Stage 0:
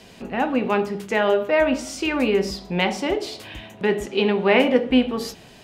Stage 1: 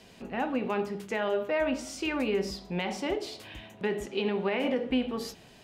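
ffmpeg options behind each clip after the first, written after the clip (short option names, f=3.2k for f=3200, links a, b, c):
-af "alimiter=limit=-12dB:level=0:latency=1:release=55,volume=-7.5dB"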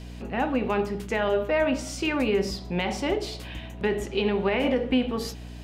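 -af "aeval=exprs='val(0)+0.00708*(sin(2*PI*60*n/s)+sin(2*PI*2*60*n/s)/2+sin(2*PI*3*60*n/s)/3+sin(2*PI*4*60*n/s)/4+sin(2*PI*5*60*n/s)/5)':c=same,volume=4.5dB"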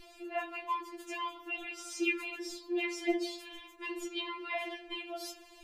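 -af "afftfilt=real='re*4*eq(mod(b,16),0)':imag='im*4*eq(mod(b,16),0)':win_size=2048:overlap=0.75,volume=-3dB"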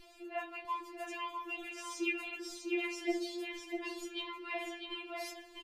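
-af "aecho=1:1:649:0.531,volume=-3.5dB"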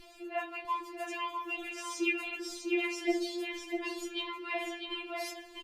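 -af "volume=4dB" -ar 48000 -c:a libopus -b:a 64k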